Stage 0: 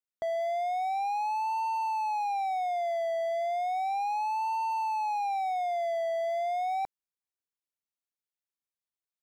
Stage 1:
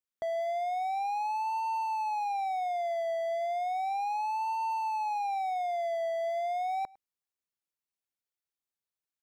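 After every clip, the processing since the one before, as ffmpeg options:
-filter_complex "[0:a]asplit=2[a][b];[b]adelay=105,volume=-24dB,highshelf=f=4k:g=-2.36[c];[a][c]amix=inputs=2:normalize=0,volume=-1.5dB"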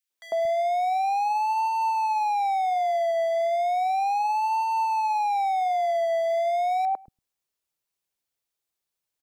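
-filter_complex "[0:a]acrossover=split=220|1600[a][b][c];[b]adelay=100[d];[a]adelay=230[e];[e][d][c]amix=inputs=3:normalize=0,volume=8dB"

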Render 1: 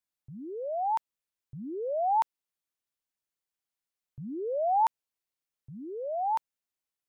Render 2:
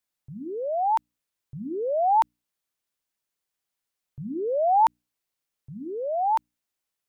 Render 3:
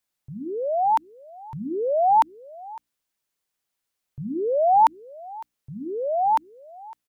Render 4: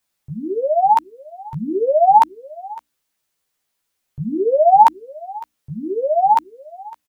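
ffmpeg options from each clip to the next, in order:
-af "bandreject=f=60:t=h:w=6,bandreject=f=120:t=h:w=6,bandreject=f=180:t=h:w=6,bandreject=f=240:t=h:w=6,bandreject=f=300:t=h:w=6,volume=5.5dB"
-af "aecho=1:1:557:0.0891,volume=3dB"
-filter_complex "[0:a]asplit=2[a][b];[b]adelay=13,volume=-3dB[c];[a][c]amix=inputs=2:normalize=0,volume=5dB"

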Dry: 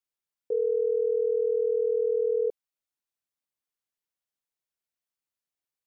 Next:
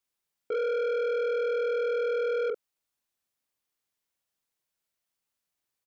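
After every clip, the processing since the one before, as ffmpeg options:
-filter_complex "[0:a]asplit=2[a][b];[b]adelay=44,volume=-5.5dB[c];[a][c]amix=inputs=2:normalize=0,asoftclip=type=tanh:threshold=-31.5dB,volume=5dB"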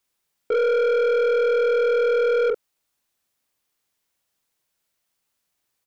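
-af "aeval=exprs='0.0501*(cos(1*acos(clip(val(0)/0.0501,-1,1)))-cos(1*PI/2))+0.00141*(cos(2*acos(clip(val(0)/0.0501,-1,1)))-cos(2*PI/2))+0.000316*(cos(6*acos(clip(val(0)/0.0501,-1,1)))-cos(6*PI/2))+0.000398*(cos(8*acos(clip(val(0)/0.0501,-1,1)))-cos(8*PI/2))':c=same,volume=8.5dB"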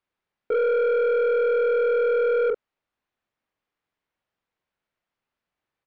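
-af "lowpass=2.3k,volume=-1.5dB"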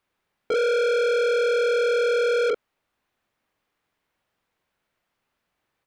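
-af "asoftclip=type=tanh:threshold=-28.5dB,volume=8dB"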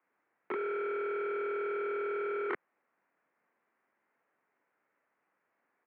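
-af "aeval=exprs='(mod(17.8*val(0)+1,2)-1)/17.8':c=same,equalizer=f=530:w=0.34:g=-3.5,highpass=f=300:t=q:w=0.5412,highpass=f=300:t=q:w=1.307,lowpass=f=2.2k:t=q:w=0.5176,lowpass=f=2.2k:t=q:w=0.7071,lowpass=f=2.2k:t=q:w=1.932,afreqshift=-71,volume=3.5dB"

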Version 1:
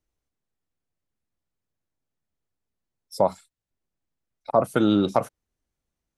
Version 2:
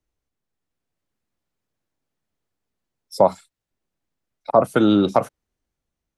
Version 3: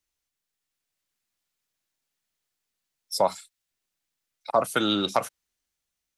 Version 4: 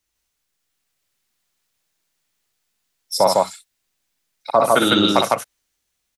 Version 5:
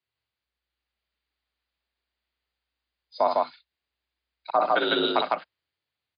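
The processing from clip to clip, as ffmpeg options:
-filter_complex "[0:a]highshelf=f=6.8k:g=-5,acrossover=split=160[a][b];[b]dynaudnorm=f=160:g=9:m=5dB[c];[a][c]amix=inputs=2:normalize=0,volume=1.5dB"
-af "tiltshelf=f=1.2k:g=-9.5,volume=-2.5dB"
-af "aecho=1:1:58.31|154.5:0.562|0.891,volume=6dB"
-af "bass=f=250:g=-5,treble=f=4k:g=-3,afreqshift=61,volume=-6.5dB" -ar 11025 -c:a libmp3lame -b:a 56k

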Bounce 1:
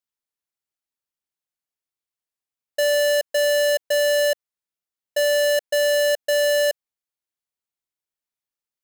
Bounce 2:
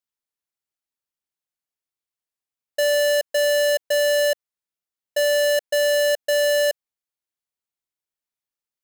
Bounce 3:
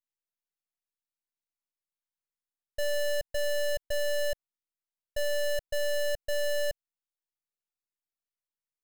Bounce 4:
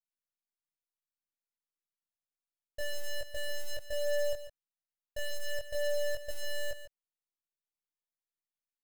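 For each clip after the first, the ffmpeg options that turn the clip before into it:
-af anull
-af "aeval=exprs='max(val(0),0)':c=same,volume=-5.5dB"
-filter_complex "[0:a]flanger=delay=19.5:depth=2.2:speed=0.3,asplit=2[a][b];[b]acrusher=bits=4:dc=4:mix=0:aa=0.000001,volume=-7dB[c];[a][c]amix=inputs=2:normalize=0,aecho=1:1:144:0.251,volume=-5.5dB"

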